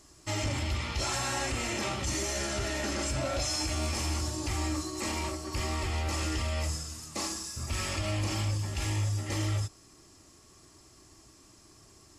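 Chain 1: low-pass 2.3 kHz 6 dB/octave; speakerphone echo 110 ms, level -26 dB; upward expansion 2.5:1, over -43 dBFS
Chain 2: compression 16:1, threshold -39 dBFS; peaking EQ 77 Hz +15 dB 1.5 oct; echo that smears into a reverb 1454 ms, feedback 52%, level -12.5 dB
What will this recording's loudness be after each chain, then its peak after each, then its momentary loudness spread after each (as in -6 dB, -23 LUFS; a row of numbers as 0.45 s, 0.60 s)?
-39.0 LUFS, -34.5 LUFS; -23.5 dBFS, -21.0 dBFS; 10 LU, 12 LU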